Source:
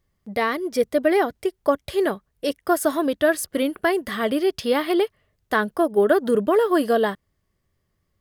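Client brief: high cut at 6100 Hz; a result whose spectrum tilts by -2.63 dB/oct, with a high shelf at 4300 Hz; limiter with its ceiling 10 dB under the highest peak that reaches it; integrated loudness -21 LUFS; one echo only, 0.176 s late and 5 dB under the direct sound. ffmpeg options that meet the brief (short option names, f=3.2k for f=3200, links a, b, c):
-af "lowpass=6.1k,highshelf=f=4.3k:g=7.5,alimiter=limit=-15dB:level=0:latency=1,aecho=1:1:176:0.562,volume=3.5dB"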